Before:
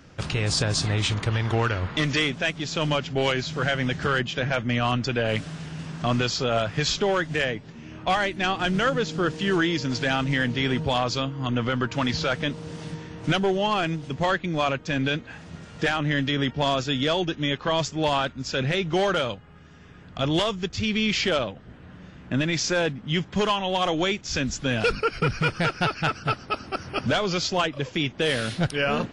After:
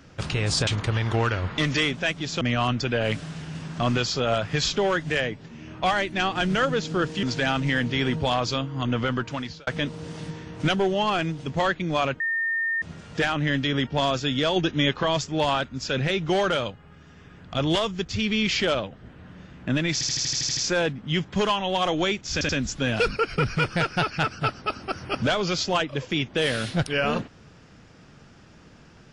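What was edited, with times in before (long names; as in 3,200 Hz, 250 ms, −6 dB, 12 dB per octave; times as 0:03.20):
0:00.67–0:01.06: remove
0:02.80–0:04.65: remove
0:09.47–0:09.87: remove
0:11.73–0:12.31: fade out
0:14.84–0:15.46: beep over 1,820 Hz −22.5 dBFS
0:17.20–0:17.67: clip gain +3.5 dB
0:22.57: stutter 0.08 s, 9 plays
0:24.33: stutter 0.08 s, 3 plays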